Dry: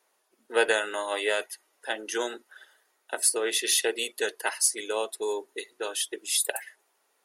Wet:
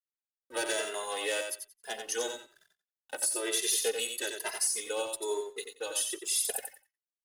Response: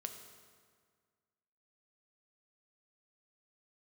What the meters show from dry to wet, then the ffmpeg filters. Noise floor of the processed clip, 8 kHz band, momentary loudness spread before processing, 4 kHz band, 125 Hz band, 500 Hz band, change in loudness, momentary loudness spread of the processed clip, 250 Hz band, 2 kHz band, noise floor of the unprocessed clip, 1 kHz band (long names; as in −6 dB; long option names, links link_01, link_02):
below −85 dBFS, −2.5 dB, 12 LU, −4.0 dB, can't be measured, −5.5 dB, −4.0 dB, 12 LU, −5.0 dB, −7.5 dB, −72 dBFS, −6.0 dB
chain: -filter_complex "[0:a]acrossover=split=340|7500[link_01][link_02][link_03];[link_02]volume=22.5dB,asoftclip=hard,volume=-22.5dB[link_04];[link_01][link_04][link_03]amix=inputs=3:normalize=0,bass=frequency=250:gain=-7,treble=frequency=4000:gain=6,alimiter=limit=-15.5dB:level=0:latency=1:release=93,highpass=140,equalizer=frequency=1400:width=1.2:gain=-4.5,aeval=exprs='sgn(val(0))*max(abs(val(0))-0.00299,0)':channel_layout=same,asplit=2[link_05][link_06];[link_06]aecho=0:1:90|180|270:0.501|0.0902|0.0162[link_07];[link_05][link_07]amix=inputs=2:normalize=0,asplit=2[link_08][link_09];[link_09]adelay=2.5,afreqshift=1.1[link_10];[link_08][link_10]amix=inputs=2:normalize=1"